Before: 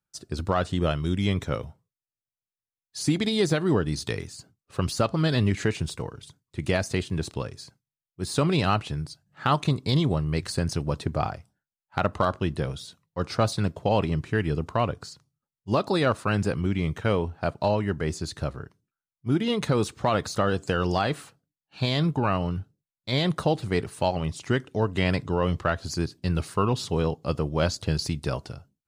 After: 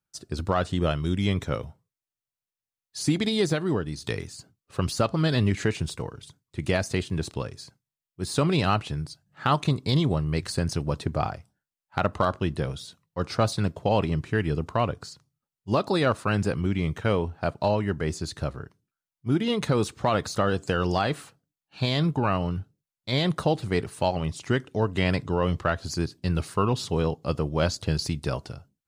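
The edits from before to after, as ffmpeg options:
ffmpeg -i in.wav -filter_complex "[0:a]asplit=2[link_01][link_02];[link_01]atrim=end=4.04,asetpts=PTS-STARTPTS,afade=type=out:start_time=3.32:duration=0.72:silence=0.446684[link_03];[link_02]atrim=start=4.04,asetpts=PTS-STARTPTS,afade=type=in:duration=0.004:curve=hsin:silence=0.446684[link_04];[link_03][link_04]concat=n=2:v=0:a=1" out.wav

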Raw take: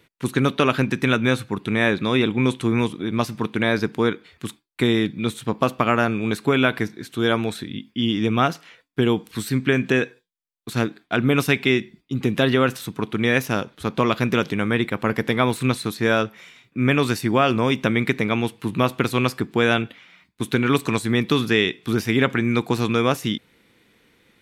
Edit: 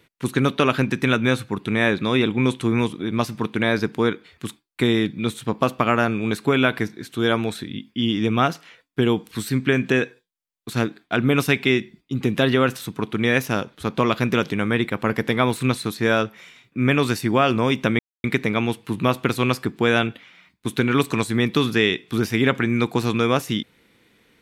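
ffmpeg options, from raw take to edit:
ffmpeg -i in.wav -filter_complex "[0:a]asplit=2[link_01][link_02];[link_01]atrim=end=17.99,asetpts=PTS-STARTPTS,afade=type=out:start_time=17.986:duration=0.004:curve=hsin,apad=pad_dur=0.25[link_03];[link_02]atrim=start=17.99,asetpts=PTS-STARTPTS,afade=type=in:duration=0.004:curve=hsin[link_04];[link_03][link_04]concat=n=2:v=0:a=1" out.wav

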